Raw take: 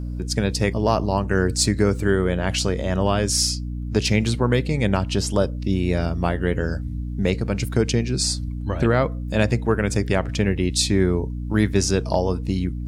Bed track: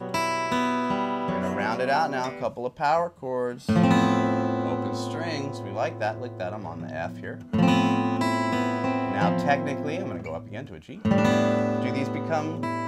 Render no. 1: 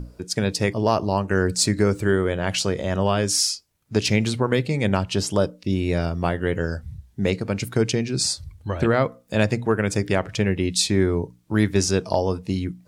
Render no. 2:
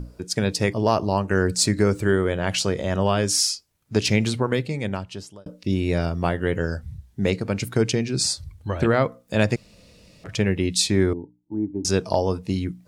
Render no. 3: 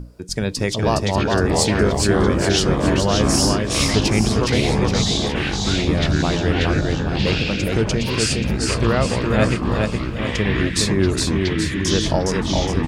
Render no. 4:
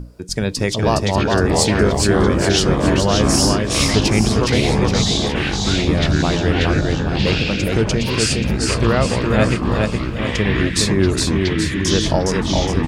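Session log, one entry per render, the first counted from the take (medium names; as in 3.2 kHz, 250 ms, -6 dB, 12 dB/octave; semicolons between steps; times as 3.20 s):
hum notches 60/120/180/240/300 Hz
4.29–5.46 s: fade out; 9.56–10.24 s: room tone; 11.13–11.85 s: cascade formant filter u
feedback delay 414 ms, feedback 48%, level -3 dB; ever faster or slower copies 291 ms, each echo -6 st, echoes 3
trim +2 dB; peak limiter -2 dBFS, peak gain reduction 1.5 dB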